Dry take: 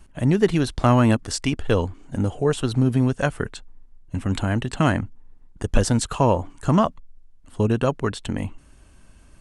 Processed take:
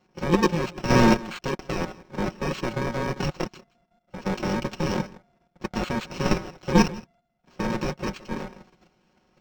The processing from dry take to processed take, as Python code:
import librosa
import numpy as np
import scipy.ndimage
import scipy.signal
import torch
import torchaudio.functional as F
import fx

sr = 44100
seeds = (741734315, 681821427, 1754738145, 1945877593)

y = fx.bit_reversed(x, sr, seeds[0], block=64)
y = scipy.signal.sosfilt(scipy.signal.butter(2, 200.0, 'highpass', fs=sr, output='sos'), y)
y = fx.transient(y, sr, attack_db=-4, sustain_db=0)
y = fx.peak_eq(y, sr, hz=9700.0, db=-13.0, octaves=2.1)
y = y + 10.0 ** (-19.0 / 20.0) * np.pad(y, (int(163 * sr / 1000.0), 0))[:len(y)]
y = fx.level_steps(y, sr, step_db=10)
y = fx.vibrato(y, sr, rate_hz=4.6, depth_cents=20.0)
y = y + 0.67 * np.pad(y, (int(5.5 * sr / 1000.0), 0))[:len(y)]
y = np.interp(np.arange(len(y)), np.arange(len(y))[::4], y[::4])
y = y * librosa.db_to_amplitude(4.5)